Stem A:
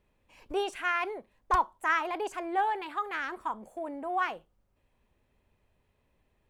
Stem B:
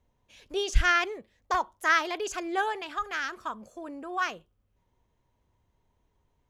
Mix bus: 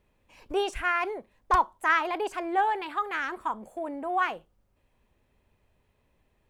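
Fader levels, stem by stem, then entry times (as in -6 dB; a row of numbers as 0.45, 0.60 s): +2.5, -17.5 dB; 0.00, 0.00 s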